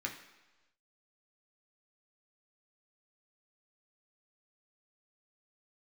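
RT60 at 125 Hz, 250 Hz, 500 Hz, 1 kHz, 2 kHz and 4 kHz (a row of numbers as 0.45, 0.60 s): 1.0, 1.0, 1.1, 1.1, 1.1, 1.2 s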